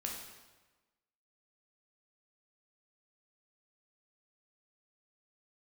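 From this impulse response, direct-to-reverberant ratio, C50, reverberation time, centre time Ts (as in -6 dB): -1.0 dB, 3.0 dB, 1.2 s, 50 ms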